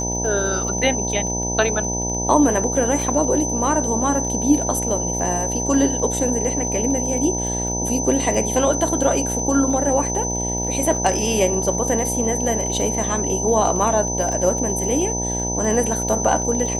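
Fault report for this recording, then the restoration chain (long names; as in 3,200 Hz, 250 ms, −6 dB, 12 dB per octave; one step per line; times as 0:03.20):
mains buzz 60 Hz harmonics 16 −26 dBFS
surface crackle 24 per second −28 dBFS
whistle 6,100 Hz −24 dBFS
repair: click removal
hum removal 60 Hz, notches 16
notch filter 6,100 Hz, Q 30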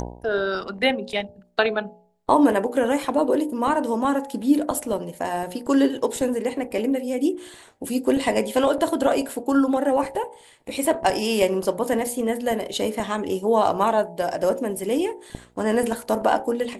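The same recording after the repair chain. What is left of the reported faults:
none of them is left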